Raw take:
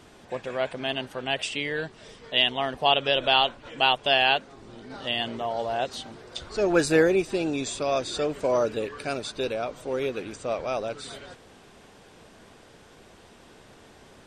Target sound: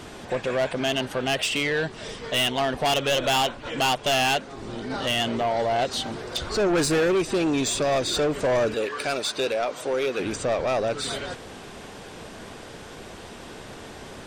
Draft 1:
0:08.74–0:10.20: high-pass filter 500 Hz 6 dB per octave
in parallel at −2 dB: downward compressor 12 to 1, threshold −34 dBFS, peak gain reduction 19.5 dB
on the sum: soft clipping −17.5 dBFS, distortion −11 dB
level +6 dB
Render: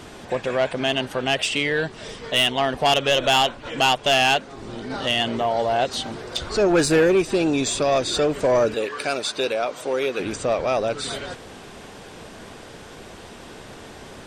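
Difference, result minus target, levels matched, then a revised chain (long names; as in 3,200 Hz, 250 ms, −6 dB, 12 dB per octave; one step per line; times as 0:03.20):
soft clipping: distortion −5 dB
0:08.74–0:10.20: high-pass filter 500 Hz 6 dB per octave
in parallel at −2 dB: downward compressor 12 to 1, threshold −34 dBFS, peak gain reduction 19.5 dB
on the sum: soft clipping −24.5 dBFS, distortion −6 dB
level +6 dB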